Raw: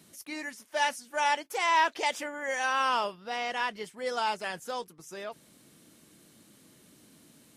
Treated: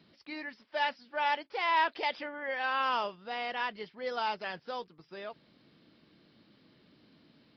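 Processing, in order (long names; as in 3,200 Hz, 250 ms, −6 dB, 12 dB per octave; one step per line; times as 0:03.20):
downsampling to 11,025 Hz
level −3 dB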